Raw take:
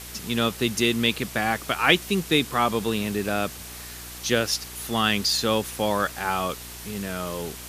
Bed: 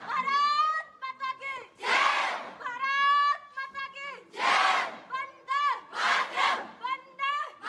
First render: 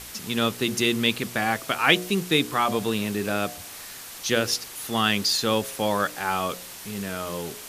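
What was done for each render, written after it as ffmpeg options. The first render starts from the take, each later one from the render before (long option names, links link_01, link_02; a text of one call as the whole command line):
ffmpeg -i in.wav -af "bandreject=frequency=60:width_type=h:width=4,bandreject=frequency=120:width_type=h:width=4,bandreject=frequency=180:width_type=h:width=4,bandreject=frequency=240:width_type=h:width=4,bandreject=frequency=300:width_type=h:width=4,bandreject=frequency=360:width_type=h:width=4,bandreject=frequency=420:width_type=h:width=4,bandreject=frequency=480:width_type=h:width=4,bandreject=frequency=540:width_type=h:width=4,bandreject=frequency=600:width_type=h:width=4,bandreject=frequency=660:width_type=h:width=4,bandreject=frequency=720:width_type=h:width=4" out.wav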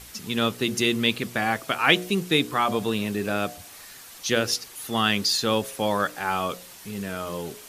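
ffmpeg -i in.wav -af "afftdn=noise_reduction=6:noise_floor=-41" out.wav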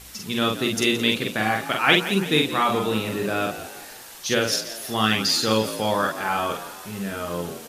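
ffmpeg -i in.wav -filter_complex "[0:a]asplit=2[link_01][link_02];[link_02]adelay=46,volume=-3dB[link_03];[link_01][link_03]amix=inputs=2:normalize=0,asplit=2[link_04][link_05];[link_05]asplit=5[link_06][link_07][link_08][link_09][link_10];[link_06]adelay=170,afreqshift=55,volume=-13dB[link_11];[link_07]adelay=340,afreqshift=110,volume=-18.5dB[link_12];[link_08]adelay=510,afreqshift=165,volume=-24dB[link_13];[link_09]adelay=680,afreqshift=220,volume=-29.5dB[link_14];[link_10]adelay=850,afreqshift=275,volume=-35.1dB[link_15];[link_11][link_12][link_13][link_14][link_15]amix=inputs=5:normalize=0[link_16];[link_04][link_16]amix=inputs=2:normalize=0" out.wav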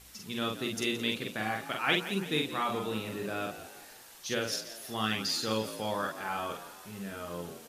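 ffmpeg -i in.wav -af "volume=-10.5dB" out.wav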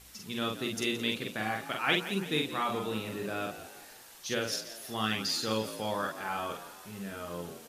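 ffmpeg -i in.wav -af anull out.wav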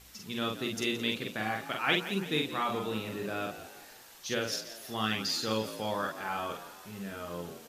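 ffmpeg -i in.wav -af "equalizer=frequency=9700:width=2.1:gain=-4.5" out.wav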